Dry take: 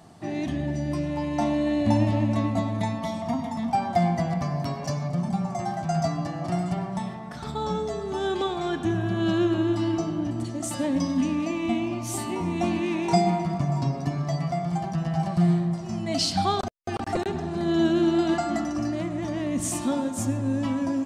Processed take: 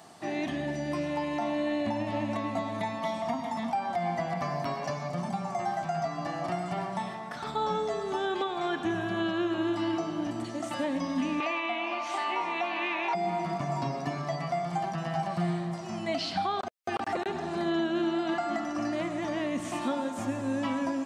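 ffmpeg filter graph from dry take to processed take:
ffmpeg -i in.wav -filter_complex "[0:a]asettb=1/sr,asplit=3[link_01][link_02][link_03];[link_01]atrim=end=11.404[link_04];[link_02]atrim=start=11.4:end=13.15,asetpts=PTS-STARTPTS,afade=type=in:duration=0.004:curve=qsin,afade=type=out:start_time=1.746:duration=0.004:curve=qsin,highpass=690,lowpass=4100,acontrast=70[link_05];[link_03]atrim=start=13.146[link_06];[link_04][link_05]acrossfade=duration=0.004:curve1=hsin:curve2=qsin[link_07];[link_07][link_06]acrossfade=duration=0.004:curve1=qsin:curve2=hsin,acrossover=split=3400[link_08][link_09];[link_09]acompressor=threshold=-55dB:ratio=4:attack=1:release=60[link_10];[link_08][link_10]amix=inputs=2:normalize=0,highpass=frequency=670:poles=1,alimiter=level_in=1dB:limit=-24dB:level=0:latency=1:release=261,volume=-1dB,volume=4dB" out.wav

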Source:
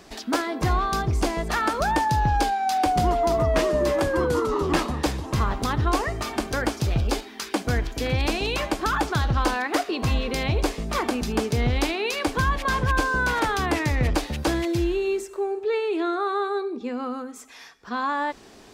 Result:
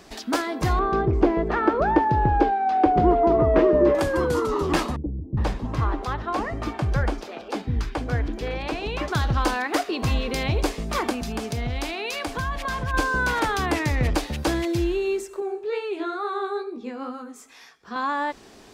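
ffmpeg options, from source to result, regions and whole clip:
ffmpeg -i in.wav -filter_complex "[0:a]asettb=1/sr,asplit=3[link_01][link_02][link_03];[link_01]atrim=end=0.794[link_04];[link_02]atrim=start=0.79:end=3.95,asetpts=PTS-STARTPTS,afade=type=in:duration=0.004:curve=qsin,afade=type=out:start_time=3.156:duration=0.004:curve=qsin,lowpass=1900,equalizer=frequency=380:width_type=o:width=0.9:gain=10.5[link_05];[link_03]atrim=start=3.946[link_06];[link_04][link_05]acrossfade=duration=0.004:curve1=hsin:curve2=qsin[link_07];[link_07][link_06]acrossfade=duration=0.004:curve1=qsin:curve2=hsin,asettb=1/sr,asplit=3[link_08][link_09][link_10];[link_08]atrim=end=4.964[link_11];[link_09]atrim=start=4.96:end=9.08,asetpts=PTS-STARTPTS,afade=type=in:duration=0.004:curve=qsin,afade=type=out:start_time=4.116:duration=0.004:curve=qsin,lowpass=frequency=1700:poles=1,acrossover=split=350[link_12][link_13];[link_13]adelay=410[link_14];[link_12][link_14]amix=inputs=2:normalize=0,atrim=end_sample=181692[link_15];[link_10]atrim=start=9.076[link_16];[link_11][link_15]acrossfade=duration=0.004:curve1=hsin:curve2=qsin[link_17];[link_17][link_16]acrossfade=duration=0.004:curve1=qsin:curve2=hsin,asettb=1/sr,asplit=3[link_18][link_19][link_20];[link_18]atrim=end=11.124[link_21];[link_19]atrim=start=11.12:end=12.94,asetpts=PTS-STARTPTS,afade=type=in:duration=0.004:curve=qsin,afade=type=out:start_time=1.816:duration=0.004:curve=qsin,equalizer=frequency=390:width_type=o:width=0.81:gain=-4.5,acompressor=threshold=-27dB:ratio=2:attack=3.2:release=140:knee=1:detection=peak,aeval=exprs='val(0)+0.01*sin(2*PI*690*n/s)':channel_layout=same[link_22];[link_20]atrim=start=12.936[link_23];[link_21][link_22]acrossfade=duration=0.004:curve1=hsin:curve2=qsin[link_24];[link_24][link_23]acrossfade=duration=0.004:curve1=qsin:curve2=hsin,asettb=1/sr,asplit=3[link_25][link_26][link_27];[link_25]atrim=end=15.404[link_28];[link_26]atrim=start=15.4:end=17.96,asetpts=PTS-STARTPTS,afade=type=in:duration=0.004:curve=qsin,afade=type=out:start_time=2.556:duration=0.004:curve=qsin,highpass=52,flanger=delay=16.5:depth=5.9:speed=2.2[link_29];[link_27]atrim=start=17.956[link_30];[link_28][link_29]acrossfade=duration=0.004:curve1=hsin:curve2=qsin[link_31];[link_31][link_30]acrossfade=duration=0.004:curve1=qsin:curve2=hsin" out.wav

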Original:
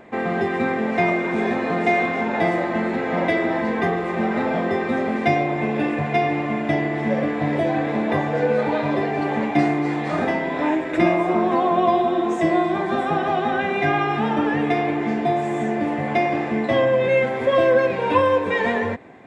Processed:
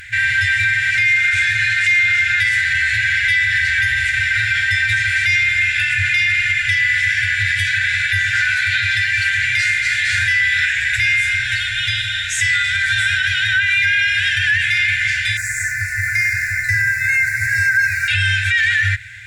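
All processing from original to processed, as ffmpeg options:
ffmpeg -i in.wav -filter_complex "[0:a]asettb=1/sr,asplit=3[link_01][link_02][link_03];[link_01]atrim=end=15.374[link_04];[link_02]atrim=start=15.37:end=18.08,asetpts=PTS-STARTPTS,afade=type=in:duration=0.004:curve=qsin,afade=type=out:start_time=2.706:duration=0.004:curve=qsin,aeval=exprs='sgn(val(0))*max(abs(val(0))-0.00251,0)':channel_layout=same,asuperstop=centerf=3200:order=4:qfactor=1[link_05];[link_03]atrim=start=18.076[link_06];[link_04][link_05]acrossfade=duration=0.004:curve1=hsin:curve2=qsin[link_07];[link_07][link_06]acrossfade=duration=0.004:curve1=qsin:curve2=hsin,aemphasis=mode=production:type=cd,afftfilt=real='re*(1-between(b*sr/4096,120,1400))':imag='im*(1-between(b*sr/4096,120,1400))':win_size=4096:overlap=0.75,alimiter=level_in=24.5dB:limit=-1dB:release=50:level=0:latency=1,volume=-7dB" out.wav

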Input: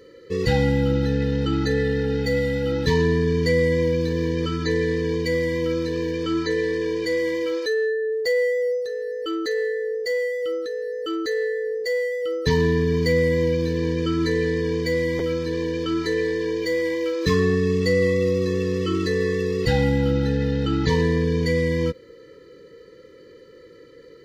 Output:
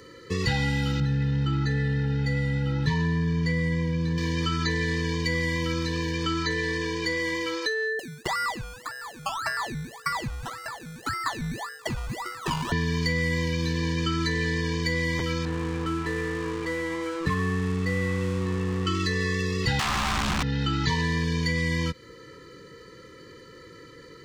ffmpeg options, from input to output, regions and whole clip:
ffmpeg -i in.wav -filter_complex "[0:a]asettb=1/sr,asplit=3[link_01][link_02][link_03];[link_01]atrim=end=1.004[link_04];[link_02]atrim=start=1:end=4.18,asetpts=PTS-STARTPTS,afade=type=in:duration=0.004:curve=qsin,afade=type=out:start_time=3.176:duration=0.004:curve=qsin,lowpass=frequency=1100:poles=1,equalizer=frequency=150:width_type=o:width=0.24:gain=11.5[link_05];[link_03]atrim=start=4.176[link_06];[link_04][link_05]acrossfade=duration=0.004:curve1=hsin:curve2=qsin[link_07];[link_07][link_06]acrossfade=duration=0.004:curve1=qsin:curve2=hsin,asettb=1/sr,asplit=3[link_08][link_09][link_10];[link_08]atrim=end=7.994[link_11];[link_09]atrim=start=7.99:end=12.72,asetpts=PTS-STARTPTS,afade=type=in:duration=0.004:curve=qsin,afade=type=out:start_time=4.726:duration=0.004:curve=qsin,highpass=frequency=930:width=0.5412,highpass=frequency=930:width=1.3066,acrusher=samples=18:mix=1:aa=0.000001:lfo=1:lforange=10.8:lforate=1.8[link_12];[link_10]atrim=start=12.716[link_13];[link_11][link_12]acrossfade=duration=0.004:curve1=hsin:curve2=qsin[link_14];[link_14][link_13]acrossfade=duration=0.004:curve1=qsin:curve2=hsin,asettb=1/sr,asplit=3[link_15][link_16][link_17];[link_15]atrim=end=15.454[link_18];[link_16]atrim=start=15.45:end=18.87,asetpts=PTS-STARTPTS,afade=type=in:duration=0.004:curve=qsin,afade=type=out:start_time=3.416:duration=0.004:curve=qsin,lowpass=1500,aeval=exprs='sgn(val(0))*max(abs(val(0))-0.00944,0)':channel_layout=same[link_19];[link_17]atrim=start=18.866[link_20];[link_18][link_19]acrossfade=duration=0.004:curve1=hsin:curve2=qsin[link_21];[link_21][link_20]acrossfade=duration=0.004:curve1=qsin:curve2=hsin,asettb=1/sr,asplit=3[link_22][link_23][link_24];[link_22]atrim=end=19.794[link_25];[link_23]atrim=start=19.79:end=20.43,asetpts=PTS-STARTPTS,afade=type=in:duration=0.004:curve=qsin,afade=type=out:start_time=0.636:duration=0.004:curve=qsin,aeval=exprs='(mod(8.41*val(0)+1,2)-1)/8.41':channel_layout=same,asubboost=boost=11.5:cutoff=240[link_26];[link_24]atrim=start=20.426[link_27];[link_25][link_26]acrossfade=duration=0.004:curve1=hsin:curve2=qsin[link_28];[link_28][link_27]acrossfade=duration=0.004:curve1=qsin:curve2=hsin,equalizer=frequency=125:width_type=o:width=1:gain=4,equalizer=frequency=500:width_type=o:width=1:gain=-10,equalizer=frequency=1000:width_type=o:width=1:gain=8,equalizer=frequency=8000:width_type=o:width=1:gain=7,acrossover=split=130|1800|5300[link_29][link_30][link_31][link_32];[link_29]acompressor=threshold=-35dB:ratio=4[link_33];[link_30]acompressor=threshold=-33dB:ratio=4[link_34];[link_31]acompressor=threshold=-33dB:ratio=4[link_35];[link_32]acompressor=threshold=-53dB:ratio=4[link_36];[link_33][link_34][link_35][link_36]amix=inputs=4:normalize=0,volume=4dB" out.wav

